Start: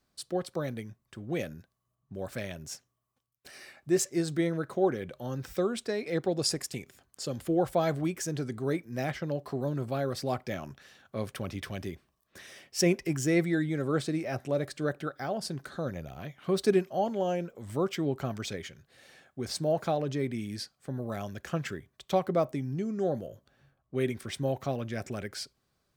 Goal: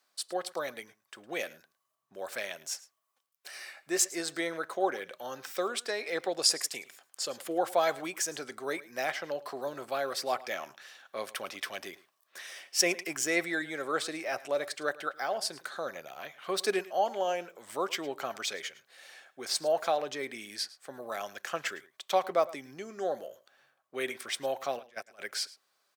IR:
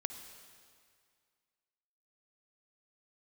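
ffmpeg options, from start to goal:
-filter_complex "[0:a]highpass=710,asplit=3[link_01][link_02][link_03];[link_01]afade=type=out:start_time=24.78:duration=0.02[link_04];[link_02]agate=range=-22dB:threshold=-39dB:ratio=16:detection=peak,afade=type=in:start_time=24.78:duration=0.02,afade=type=out:start_time=25.19:duration=0.02[link_05];[link_03]afade=type=in:start_time=25.19:duration=0.02[link_06];[link_04][link_05][link_06]amix=inputs=3:normalize=0,asplit=2[link_07][link_08];[link_08]aecho=0:1:108:0.106[link_09];[link_07][link_09]amix=inputs=2:normalize=0,volume=5dB"

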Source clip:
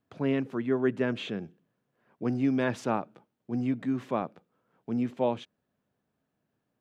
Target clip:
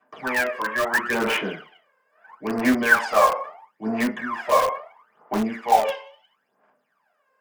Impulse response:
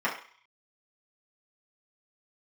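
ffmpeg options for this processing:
-filter_complex "[0:a]highpass=690[link_01];[1:a]atrim=start_sample=2205[link_02];[link_01][link_02]afir=irnorm=-1:irlink=0,asetrate=40517,aresample=44100,aphaser=in_gain=1:out_gain=1:delay=1.9:decay=0.76:speed=0.75:type=sinusoidal,asplit=2[link_03][link_04];[link_04]aeval=exprs='(mod(8.91*val(0)+1,2)-1)/8.91':channel_layout=same,volume=-9dB[link_05];[link_03][link_05]amix=inputs=2:normalize=0"

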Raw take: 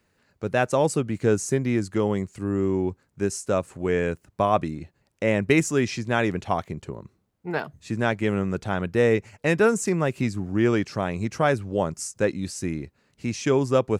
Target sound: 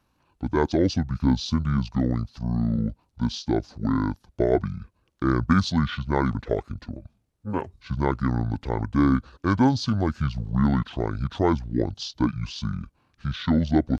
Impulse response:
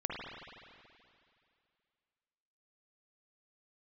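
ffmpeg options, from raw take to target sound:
-af "asetrate=26222,aresample=44100,atempo=1.68179"

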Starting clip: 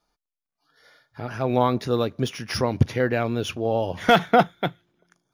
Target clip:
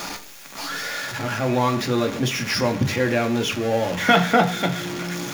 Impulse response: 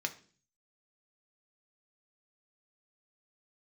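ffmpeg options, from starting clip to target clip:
-filter_complex "[0:a]aeval=exprs='val(0)+0.5*0.0596*sgn(val(0))':channel_layout=same[link_01];[1:a]atrim=start_sample=2205[link_02];[link_01][link_02]afir=irnorm=-1:irlink=0,volume=-1dB"

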